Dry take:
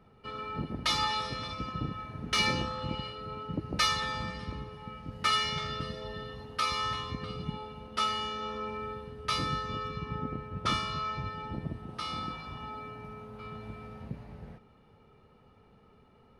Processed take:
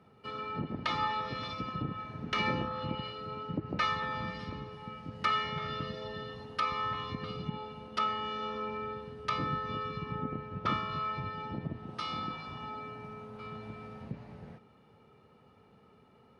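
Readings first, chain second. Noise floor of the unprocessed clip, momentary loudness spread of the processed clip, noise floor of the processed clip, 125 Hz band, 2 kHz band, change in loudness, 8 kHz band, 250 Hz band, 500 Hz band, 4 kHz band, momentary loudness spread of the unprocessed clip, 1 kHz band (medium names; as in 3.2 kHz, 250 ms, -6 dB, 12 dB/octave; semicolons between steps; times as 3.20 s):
-61 dBFS, 13 LU, -62 dBFS, -2.0 dB, -2.5 dB, -2.5 dB, under -15 dB, 0.0 dB, 0.0 dB, -7.5 dB, 16 LU, -0.5 dB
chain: low-pass that closes with the level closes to 2 kHz, closed at -29 dBFS; high-pass 100 Hz 12 dB/octave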